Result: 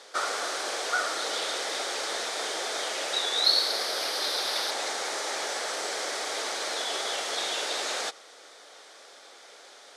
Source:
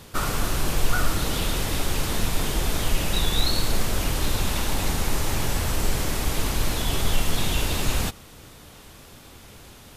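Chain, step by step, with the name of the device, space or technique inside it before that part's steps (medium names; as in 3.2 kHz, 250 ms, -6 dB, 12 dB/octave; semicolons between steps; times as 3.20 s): 3.44–4.71 s: FFT filter 2.8 kHz 0 dB, 4.8 kHz +7 dB, 7.3 kHz -6 dB, 12 kHz +10 dB; phone speaker on a table (cabinet simulation 480–8000 Hz, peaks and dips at 1 kHz -7 dB, 2.7 kHz -9 dB, 7.3 kHz -4 dB); trim +2 dB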